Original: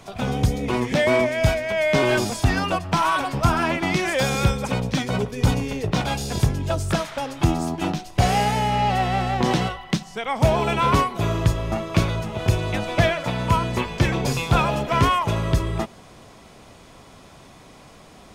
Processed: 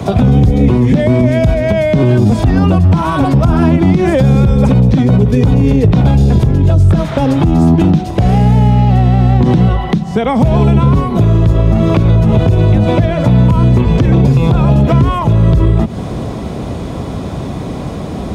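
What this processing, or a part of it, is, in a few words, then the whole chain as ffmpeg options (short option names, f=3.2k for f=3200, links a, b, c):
mastering chain: -filter_complex "[0:a]highpass=f=43:w=0.5412,highpass=f=43:w=1.3066,equalizer=f=3.7k:t=o:w=0.29:g=4,acrossover=split=220|1300|3400[a][b][c][d];[a]acompressor=threshold=-27dB:ratio=4[e];[b]acompressor=threshold=-35dB:ratio=4[f];[c]acompressor=threshold=-41dB:ratio=4[g];[d]acompressor=threshold=-47dB:ratio=4[h];[e][f][g][h]amix=inputs=4:normalize=0,acompressor=threshold=-31dB:ratio=2.5,tiltshelf=f=750:g=9.5,alimiter=level_in=22dB:limit=-1dB:release=50:level=0:latency=1,volume=-1dB"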